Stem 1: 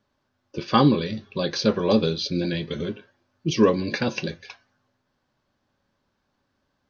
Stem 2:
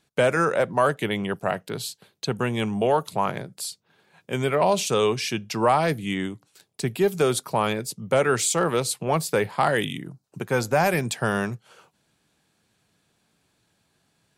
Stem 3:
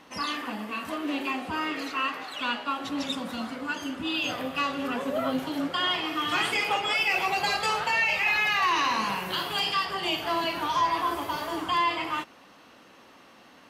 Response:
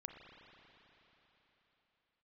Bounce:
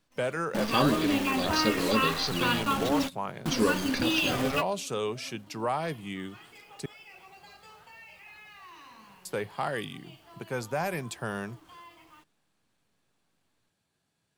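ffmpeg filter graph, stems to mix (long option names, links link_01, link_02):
-filter_complex "[0:a]highshelf=frequency=3500:gain=10.5,volume=-8.5dB,asplit=2[link_01][link_02];[1:a]volume=-10dB,asplit=3[link_03][link_04][link_05];[link_03]atrim=end=6.86,asetpts=PTS-STARTPTS,afade=type=out:start_time=6.856:duration=0.004:curve=hsin[link_06];[link_04]atrim=start=6.86:end=9.25,asetpts=PTS-STARTPTS,volume=0[link_07];[link_05]atrim=start=9.25,asetpts=PTS-STARTPTS,afade=type=in:duration=0.004:curve=hsin[link_08];[link_06][link_07][link_08]concat=n=3:v=0:a=1[link_09];[2:a]acrusher=bits=7:dc=4:mix=0:aa=0.000001,lowshelf=frequency=170:gain=10.5,volume=1dB[link_10];[link_02]apad=whole_len=603779[link_11];[link_10][link_11]sidechaingate=range=-27dB:threshold=-53dB:ratio=16:detection=peak[link_12];[link_01][link_09][link_12]amix=inputs=3:normalize=0"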